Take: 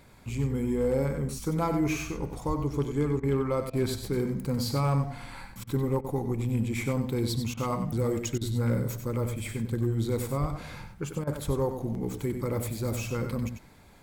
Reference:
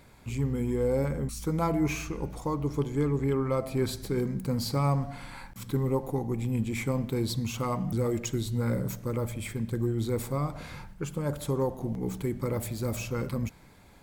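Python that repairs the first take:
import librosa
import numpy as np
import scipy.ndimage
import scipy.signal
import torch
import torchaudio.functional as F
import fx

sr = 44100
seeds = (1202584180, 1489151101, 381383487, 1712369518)

y = fx.fix_declip(x, sr, threshold_db=-18.5)
y = fx.highpass(y, sr, hz=140.0, slope=24, at=(2.47, 2.59), fade=0.02)
y = fx.highpass(y, sr, hz=140.0, slope=24, at=(10.4, 10.52), fade=0.02)
y = fx.highpass(y, sr, hz=140.0, slope=24, at=(11.46, 11.58), fade=0.02)
y = fx.fix_interpolate(y, sr, at_s=(3.2, 3.7, 5.64, 6.01, 7.54, 8.38, 11.24), length_ms=31.0)
y = fx.fix_echo_inverse(y, sr, delay_ms=94, level_db=-8.0)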